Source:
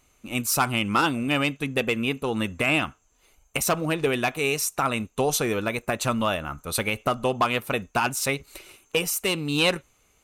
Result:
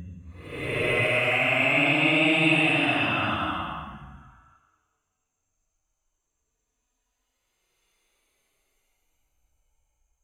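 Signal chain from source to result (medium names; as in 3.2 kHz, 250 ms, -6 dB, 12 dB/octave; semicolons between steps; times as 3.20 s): spectral noise reduction 12 dB; Paulstretch 11×, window 0.10 s, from 2.53 s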